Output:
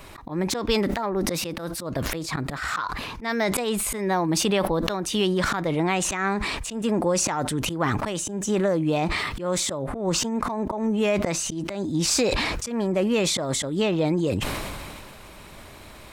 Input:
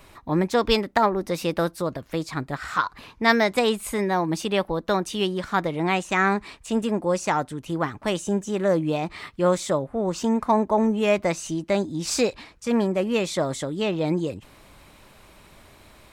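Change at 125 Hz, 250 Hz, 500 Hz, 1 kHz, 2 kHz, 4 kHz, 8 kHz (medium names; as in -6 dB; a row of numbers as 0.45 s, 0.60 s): +1.5 dB, -0.5 dB, -2.0 dB, -3.5 dB, -1.5 dB, +3.0 dB, +8.0 dB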